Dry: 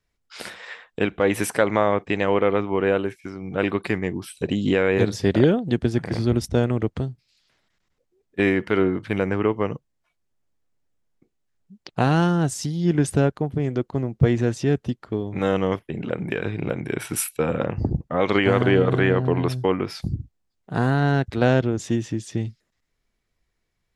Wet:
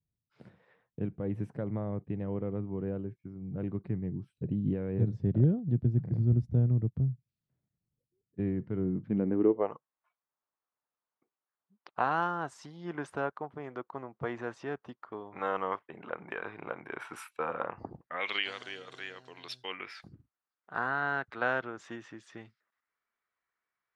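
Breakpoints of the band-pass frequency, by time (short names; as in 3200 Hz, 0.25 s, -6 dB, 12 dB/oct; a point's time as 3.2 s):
band-pass, Q 2.3
8.82 s 130 Hz
9.48 s 330 Hz
9.75 s 1100 Hz
17.89 s 1100 Hz
18.64 s 5800 Hz
19.32 s 5800 Hz
20.12 s 1300 Hz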